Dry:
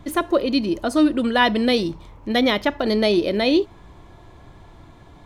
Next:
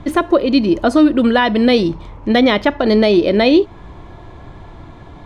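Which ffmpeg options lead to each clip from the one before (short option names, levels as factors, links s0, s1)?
-af "aemphasis=mode=reproduction:type=50fm,alimiter=limit=0.251:level=0:latency=1:release=297,volume=2.82"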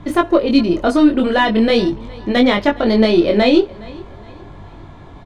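-af "aeval=exprs='0.708*(cos(1*acos(clip(val(0)/0.708,-1,1)))-cos(1*PI/2))+0.0224*(cos(4*acos(clip(val(0)/0.708,-1,1)))-cos(4*PI/2))':c=same,flanger=delay=20:depth=3.8:speed=0.43,aecho=1:1:414|828|1242:0.075|0.0292|0.0114,volume=1.26"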